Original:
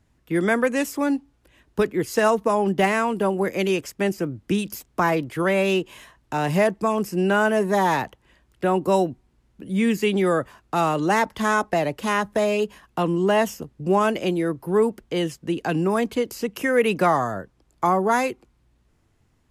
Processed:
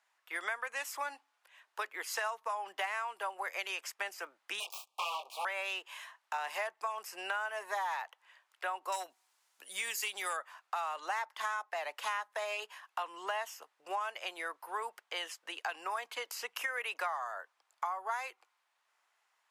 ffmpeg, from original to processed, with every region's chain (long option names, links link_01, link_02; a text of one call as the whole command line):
ffmpeg -i in.wav -filter_complex "[0:a]asettb=1/sr,asplit=3[link_01][link_02][link_03];[link_01]atrim=end=4.604[link_04];[link_02]atrim=start=4.6:end=5.45,asetpts=PTS-STARTPTS,afade=type=in:duration=0.004:curve=qsin,afade=type=out:start_time=0.846:duration=0.004:curve=qsin,asplit=2[link_05][link_06];[link_06]adelay=23,volume=-3dB[link_07];[link_05][link_07]amix=inputs=2:normalize=0,atrim=end_sample=37485,aeval=exprs='abs(val(0))':channel_layout=same,asuperstop=centerf=1700:order=12:qfactor=1.4[link_08];[link_03]atrim=start=5.446[link_09];[link_04][link_08]acrossfade=duration=0.004:curve1=hsin:curve2=qsin[link_10];[link_10][link_09]acrossfade=duration=0.004:curve1=qsin:curve2=hsin,asettb=1/sr,asplit=3[link_11][link_12][link_13];[link_11]atrim=end=8.924[link_14];[link_12]atrim=start=8.92:end=10.37,asetpts=PTS-STARTPTS,afade=type=in:duration=0.004:curve=qsin,afade=type=out:start_time=1.446:duration=0.004:curve=qsin,bass=frequency=250:gain=5,treble=frequency=4000:gain=14,asoftclip=type=hard:threshold=-11.5dB[link_15];[link_13]atrim=start=10.366[link_16];[link_14][link_15]acrossfade=duration=0.004:curve1=hsin:curve2=qsin[link_17];[link_17][link_16]acrossfade=duration=0.004:curve1=qsin:curve2=hsin,highpass=frequency=830:width=0.5412,highpass=frequency=830:width=1.3066,highshelf=frequency=4000:gain=-6.5,acompressor=threshold=-34dB:ratio=6" out.wav